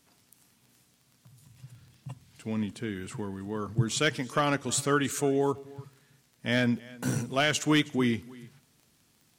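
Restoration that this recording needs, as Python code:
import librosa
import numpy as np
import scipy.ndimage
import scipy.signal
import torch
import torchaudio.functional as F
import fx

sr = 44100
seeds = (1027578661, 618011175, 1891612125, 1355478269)

y = fx.fix_declip(x, sr, threshold_db=-14.5)
y = fx.fix_declick_ar(y, sr, threshold=6.5)
y = fx.fix_echo_inverse(y, sr, delay_ms=318, level_db=-22.0)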